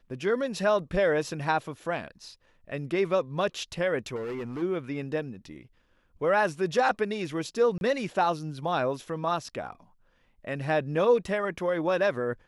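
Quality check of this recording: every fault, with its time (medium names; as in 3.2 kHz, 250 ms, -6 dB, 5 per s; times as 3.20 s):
4.15–4.63 s: clipped -31 dBFS
7.78–7.81 s: dropout 31 ms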